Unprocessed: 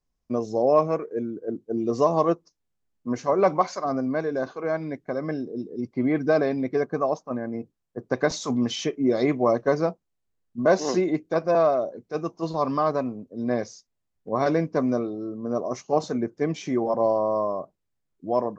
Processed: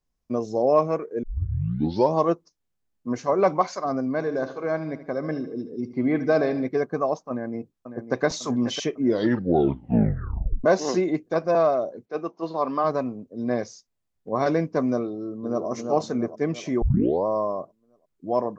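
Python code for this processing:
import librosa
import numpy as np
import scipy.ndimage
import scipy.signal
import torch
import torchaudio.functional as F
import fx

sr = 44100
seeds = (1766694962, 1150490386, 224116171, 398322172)

y = fx.echo_feedback(x, sr, ms=76, feedback_pct=51, wet_db=-13, at=(4.17, 6.67), fade=0.02)
y = fx.echo_throw(y, sr, start_s=7.3, length_s=0.94, ms=550, feedback_pct=55, wet_db=-10.0)
y = fx.bandpass_edges(y, sr, low_hz=250.0, high_hz=3700.0, at=(12.05, 12.83), fade=0.02)
y = fx.echo_throw(y, sr, start_s=15.09, length_s=0.58, ms=340, feedback_pct=55, wet_db=-5.0)
y = fx.edit(y, sr, fx.tape_start(start_s=1.23, length_s=0.93),
    fx.tape_stop(start_s=9.02, length_s=1.62),
    fx.tape_start(start_s=16.82, length_s=0.44), tone=tone)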